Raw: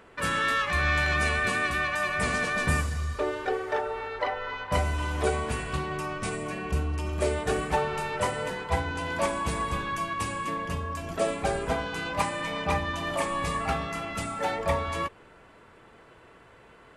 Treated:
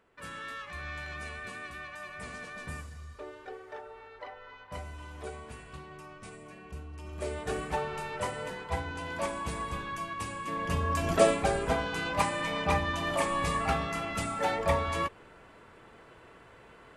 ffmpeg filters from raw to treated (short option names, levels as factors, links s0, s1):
-af "volume=2.11,afade=t=in:st=6.91:d=0.64:silence=0.354813,afade=t=in:st=10.45:d=0.67:silence=0.237137,afade=t=out:st=11.12:d=0.35:silence=0.446684"